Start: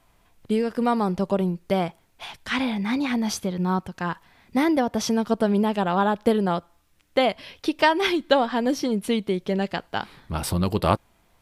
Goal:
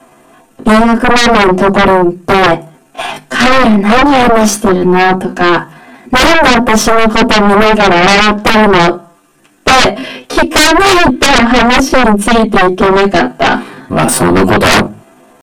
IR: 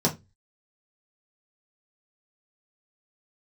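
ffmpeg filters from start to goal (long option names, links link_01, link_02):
-filter_complex "[1:a]atrim=start_sample=2205,asetrate=70560,aresample=44100[link_01];[0:a][link_01]afir=irnorm=-1:irlink=0,atempo=0.74,lowshelf=frequency=380:gain=-6.5,aeval=exprs='2*(cos(1*acos(clip(val(0)/2,-1,1)))-cos(1*PI/2))+0.282*(cos(8*acos(clip(val(0)/2,-1,1)))-cos(8*PI/2))':channel_layout=same,aeval=exprs='2.51*sin(PI/2*7.08*val(0)/2.51)':channel_layout=same,volume=-9dB"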